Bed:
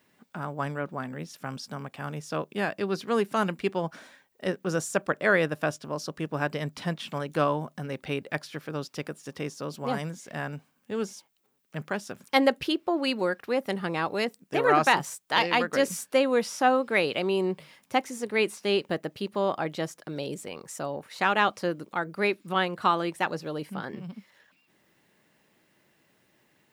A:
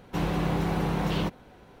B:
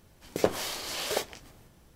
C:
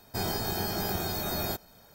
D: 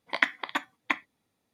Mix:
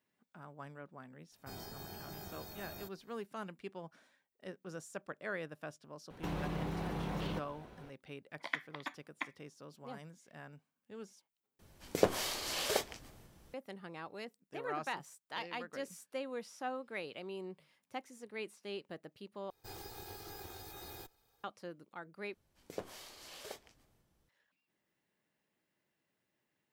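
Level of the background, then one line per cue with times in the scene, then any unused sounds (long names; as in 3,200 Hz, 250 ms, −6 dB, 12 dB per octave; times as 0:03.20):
bed −18 dB
0:01.32: mix in C −17.5 dB
0:06.10: mix in A −3.5 dB + downward compressor 4 to 1, threshold −32 dBFS
0:08.31: mix in D −13 dB
0:11.59: overwrite with B −3 dB
0:19.50: overwrite with C −16 dB + lower of the sound and its delayed copy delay 2.4 ms
0:22.34: overwrite with B −17.5 dB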